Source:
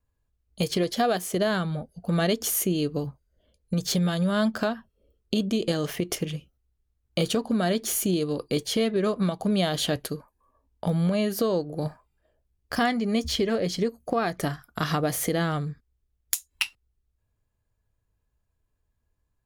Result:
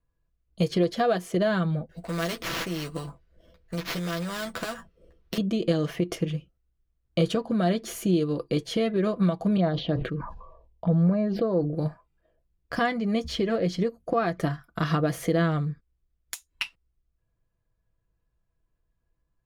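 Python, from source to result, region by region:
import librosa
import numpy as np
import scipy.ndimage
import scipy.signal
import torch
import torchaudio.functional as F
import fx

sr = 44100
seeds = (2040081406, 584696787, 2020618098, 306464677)

y = fx.chain(x, sr, fx.doubler(ms=12.0, db=-4),
    fx.sample_hold(seeds[0], rate_hz=8600.0, jitter_pct=0),
    fx.spectral_comp(ratio=2.0), at=(1.89, 5.38))
y = fx.chain(y, sr, fx.env_phaser(low_hz=230.0, high_hz=3200.0, full_db=-20.5),
    fx.air_absorb(metres=210.0),
    fx.sustainer(db_per_s=53.0), at=(9.57, 11.75))
y = fx.lowpass(y, sr, hz=2200.0, slope=6)
y = fx.notch(y, sr, hz=840.0, q=12.0)
y = y + 0.45 * np.pad(y, (int(6.0 * sr / 1000.0), 0))[:len(y)]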